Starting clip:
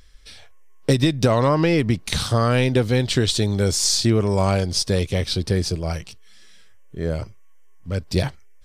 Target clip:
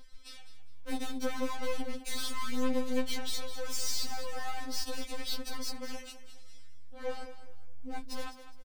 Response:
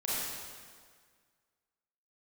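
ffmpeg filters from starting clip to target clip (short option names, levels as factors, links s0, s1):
-filter_complex "[0:a]asettb=1/sr,asplit=3[s0][s1][s2];[s0]atrim=end=1.094[s3];[s1]atrim=start=1.09:end=1.69,asetpts=PTS-STARTPTS,afade=t=in:d=0.004:c=qsin,afade=t=out:st=0.596:d=0.004:c=qsin,lowshelf=f=190:g=-7[s4];[s2]atrim=start=1.686[s5];[s3][s4]acrossfade=d=0.004:c1=hsin:c2=qsin[s6];[s6][s5]acrossfade=d=0.004:c1=qsin:c2=hsin,asettb=1/sr,asplit=3[s7][s8][s9];[s7]atrim=end=3.004[s10];[s8]atrim=start=3:end=3.45,asetpts=PTS-STARTPTS,afade=t=in:d=0.004:c=qsin,afade=t=out:st=0.446:d=0.004:c=qsin,acompressor=threshold=0.0891:ratio=6[s11];[s9]atrim=start=3.446[s12];[s10][s11]acrossfade=d=0.004:c1=hsin:c2=qsin[s13];[s13][s12]acrossfade=d=0.004:c1=qsin:c2=hsin,aeval=exprs='(tanh(50.1*val(0)+0.65)-tanh(0.65))/50.1':c=same,asettb=1/sr,asplit=3[s14][s15][s16];[s14]atrim=end=7.034[s17];[s15]atrim=start=7.03:end=8.06,asetpts=PTS-STARTPTS,afade=t=in:d=0.004:c=qsin,afade=t=out:st=1.026:d=0.004:c=qsin,asplit=2[s18][s19];[s19]adelay=18,volume=0.708[s20];[s18][s20]amix=inputs=2:normalize=0,atrim=end_sample=45423[s21];[s16]atrim=start=8.056[s22];[s17][s21]acrossfade=d=0.004:c1=hsin:c2=qsin[s23];[s23][s22]acrossfade=d=0.004:c1=qsin:c2=hsin,aecho=1:1:205|410|615:0.251|0.0728|0.0211,afftfilt=real='re*3.46*eq(mod(b,12),0)':imag='im*3.46*eq(mod(b,12),0)':win_size=2048:overlap=0.75,volume=1.12"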